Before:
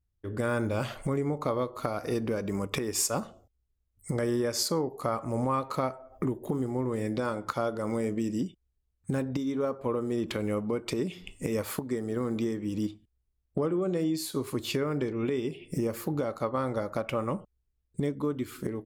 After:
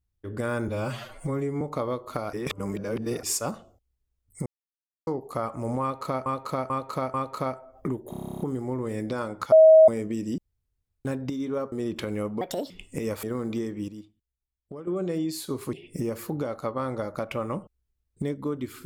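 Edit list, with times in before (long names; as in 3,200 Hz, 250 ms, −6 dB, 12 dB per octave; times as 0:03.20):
0:00.68–0:01.30: time-stretch 1.5×
0:02.02–0:02.92: reverse
0:04.15–0:04.76: silence
0:05.51–0:05.95: repeat, 4 plays
0:06.47: stutter 0.03 s, 11 plays
0:07.59–0:07.95: beep over 636 Hz −9.5 dBFS
0:08.45–0:09.12: fill with room tone
0:09.79–0:10.04: remove
0:10.73–0:11.18: play speed 154%
0:11.71–0:12.09: remove
0:12.74–0:13.73: clip gain −11.5 dB
0:14.59–0:15.51: remove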